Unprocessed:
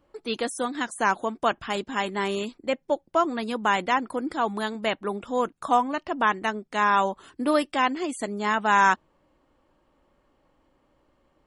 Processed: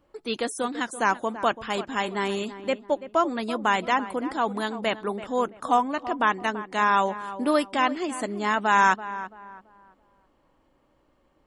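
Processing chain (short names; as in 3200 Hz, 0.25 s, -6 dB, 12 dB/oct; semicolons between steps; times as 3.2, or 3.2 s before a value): darkening echo 0.334 s, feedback 33%, low-pass 1700 Hz, level -13 dB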